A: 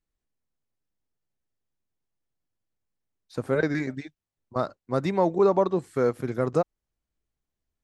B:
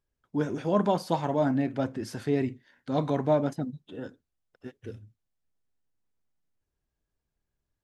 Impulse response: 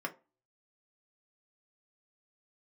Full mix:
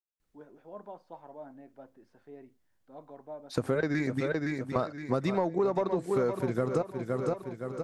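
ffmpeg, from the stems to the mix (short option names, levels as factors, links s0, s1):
-filter_complex "[0:a]acontrast=78,adelay=200,volume=0.944,asplit=2[s0][s1];[s1]volume=0.316[s2];[1:a]bandpass=f=700:t=q:w=0.88:csg=0,volume=0.126[s3];[s2]aecho=0:1:515|1030|1545|2060|2575|3090:1|0.43|0.185|0.0795|0.0342|0.0147[s4];[s0][s3][s4]amix=inputs=3:normalize=0,acompressor=threshold=0.0562:ratio=8"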